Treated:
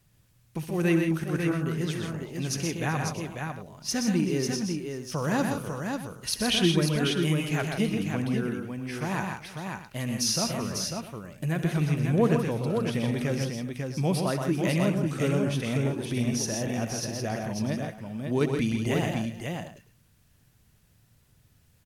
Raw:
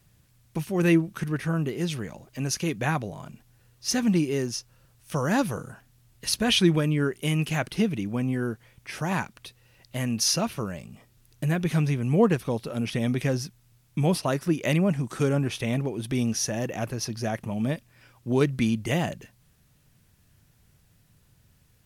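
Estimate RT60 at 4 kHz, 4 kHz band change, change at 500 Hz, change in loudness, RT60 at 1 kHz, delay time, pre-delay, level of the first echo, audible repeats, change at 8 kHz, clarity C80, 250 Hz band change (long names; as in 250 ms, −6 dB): no reverb audible, −1.0 dB, −1.0 dB, −1.5 dB, no reverb audible, 65 ms, no reverb audible, −15.0 dB, 6, −1.0 dB, no reverb audible, −1.0 dB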